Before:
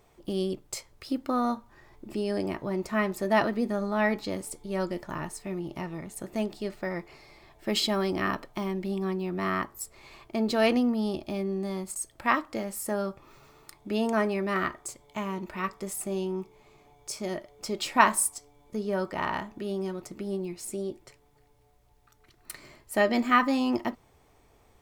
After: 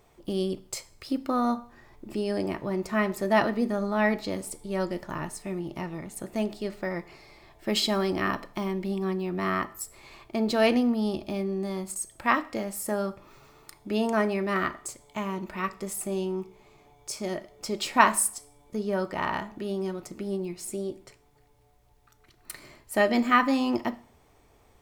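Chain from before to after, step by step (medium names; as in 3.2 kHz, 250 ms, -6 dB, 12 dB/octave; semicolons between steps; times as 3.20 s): Schroeder reverb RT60 0.52 s, combs from 26 ms, DRR 17 dB; trim +1 dB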